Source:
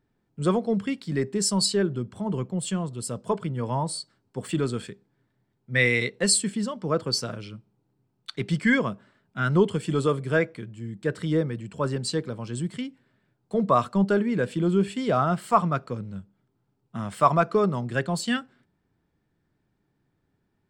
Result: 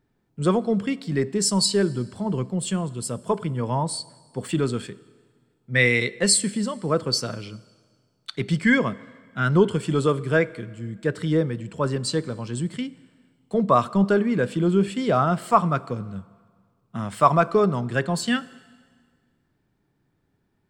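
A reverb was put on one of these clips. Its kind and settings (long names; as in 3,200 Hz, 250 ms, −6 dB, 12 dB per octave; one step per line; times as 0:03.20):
dense smooth reverb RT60 1.7 s, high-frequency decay 0.95×, DRR 19 dB
level +2.5 dB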